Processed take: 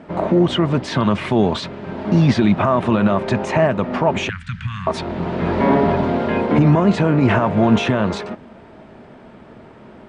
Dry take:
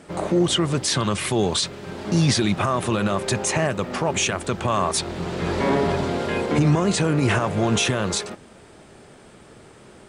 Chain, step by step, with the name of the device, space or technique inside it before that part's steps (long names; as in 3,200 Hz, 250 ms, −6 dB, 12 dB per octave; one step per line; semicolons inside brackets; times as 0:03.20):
inside a cardboard box (low-pass filter 2,600 Hz 12 dB per octave; hollow resonant body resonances 230/650/920 Hz, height 7 dB, ringing for 35 ms)
0:04.29–0:04.87: Chebyshev band-stop filter 150–1,600 Hz, order 3
level +3 dB